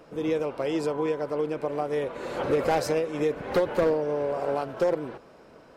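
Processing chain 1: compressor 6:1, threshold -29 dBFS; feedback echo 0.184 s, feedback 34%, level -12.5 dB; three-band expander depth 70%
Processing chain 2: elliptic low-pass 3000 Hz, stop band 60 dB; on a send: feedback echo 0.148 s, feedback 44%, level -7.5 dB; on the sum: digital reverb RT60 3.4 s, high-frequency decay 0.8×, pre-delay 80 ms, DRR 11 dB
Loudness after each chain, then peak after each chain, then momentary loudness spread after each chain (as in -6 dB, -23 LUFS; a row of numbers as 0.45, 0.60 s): -33.5, -27.0 LUFS; -17.5, -13.0 dBFS; 3, 6 LU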